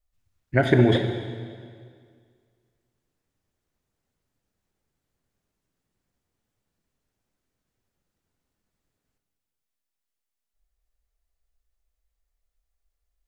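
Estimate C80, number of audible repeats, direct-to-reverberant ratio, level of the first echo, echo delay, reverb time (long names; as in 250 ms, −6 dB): 8.0 dB, no echo audible, 5.5 dB, no echo audible, no echo audible, 2.0 s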